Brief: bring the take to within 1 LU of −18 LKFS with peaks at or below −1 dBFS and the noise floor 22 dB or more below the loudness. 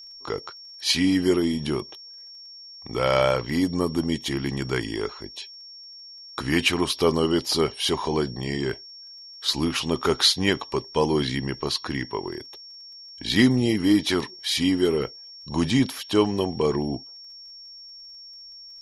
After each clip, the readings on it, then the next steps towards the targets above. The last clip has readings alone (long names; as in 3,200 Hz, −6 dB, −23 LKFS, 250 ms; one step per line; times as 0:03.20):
crackle rate 22 per second; interfering tone 5,500 Hz; level of the tone −41 dBFS; integrated loudness −24.0 LKFS; sample peak −5.0 dBFS; target loudness −18.0 LKFS
→ click removal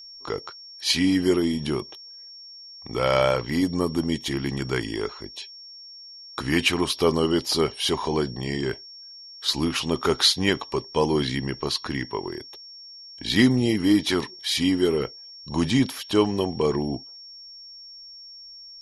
crackle rate 0.053 per second; interfering tone 5,500 Hz; level of the tone −41 dBFS
→ notch filter 5,500 Hz, Q 30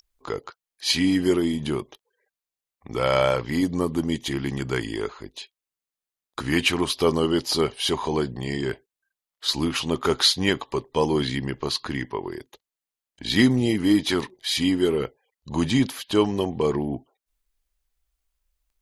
interfering tone none found; integrated loudness −24.0 LKFS; sample peak −5.0 dBFS; target loudness −18.0 LKFS
→ level +6 dB
brickwall limiter −1 dBFS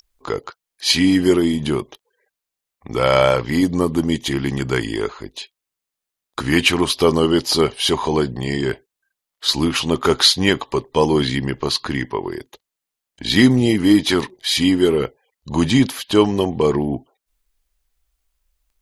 integrated loudness −18.0 LKFS; sample peak −1.0 dBFS; background noise floor −84 dBFS